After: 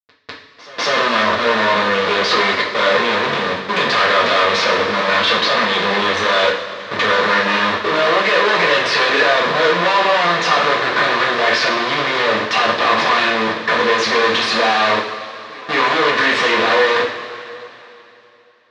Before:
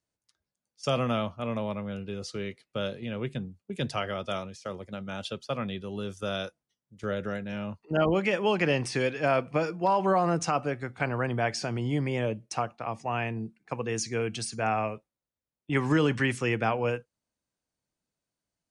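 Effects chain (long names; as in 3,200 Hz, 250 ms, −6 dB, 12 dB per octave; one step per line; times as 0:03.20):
power curve on the samples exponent 0.5
comparator with hysteresis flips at −35 dBFS
loudspeaker in its box 390–4,500 Hz, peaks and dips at 530 Hz +3 dB, 800 Hz −7 dB, 1,100 Hz +8 dB, 1,800 Hz +7 dB, 3,800 Hz +5 dB
on a send: backwards echo 199 ms −20.5 dB
on the sum: coupled-rooms reverb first 0.45 s, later 3.1 s, from −15 dB, DRR −3.5 dB
level +5.5 dB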